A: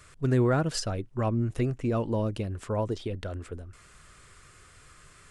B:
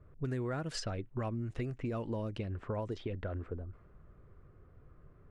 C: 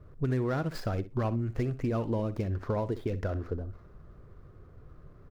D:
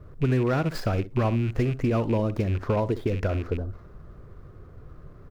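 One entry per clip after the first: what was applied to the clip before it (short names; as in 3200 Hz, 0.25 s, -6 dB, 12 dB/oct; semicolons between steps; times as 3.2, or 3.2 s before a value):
low-pass opened by the level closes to 470 Hz, open at -23 dBFS; dynamic EQ 2000 Hz, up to +4 dB, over -53 dBFS, Q 1.8; compressor 6:1, threshold -34 dBFS, peak gain reduction 14 dB
median filter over 15 samples; feedback echo 62 ms, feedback 16%, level -15 dB; gain +6.5 dB
rattling part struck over -33 dBFS, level -37 dBFS; gain +6 dB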